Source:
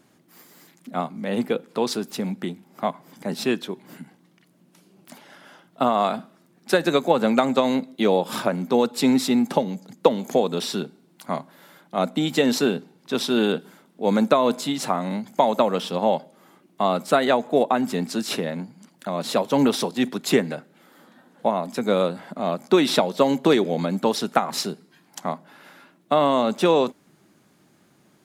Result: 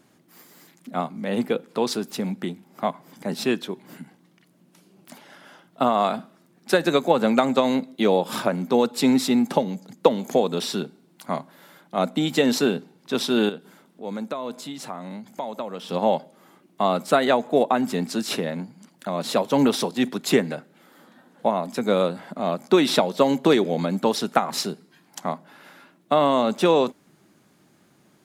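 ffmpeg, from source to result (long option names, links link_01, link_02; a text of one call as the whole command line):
ffmpeg -i in.wav -filter_complex "[0:a]asettb=1/sr,asplit=3[link_01][link_02][link_03];[link_01]atrim=end=13.494[link_04];[link_02]atrim=start=13.49:end=15.89,asetpts=PTS-STARTPTS,afade=type=in:duration=0.004:curve=qsin,afade=type=out:start_time=2.396:duration=0.004:curve=qsin,acompressor=threshold=-48dB:ratio=1.5:attack=3.2:release=140:knee=1:detection=peak[link_05];[link_03]atrim=start=15.886[link_06];[link_04][link_05]acrossfade=duration=0.004:curve1=hsin:curve2=qsin[link_07];[link_07][link_06]acrossfade=duration=0.004:curve1=qsin:curve2=hsin" out.wav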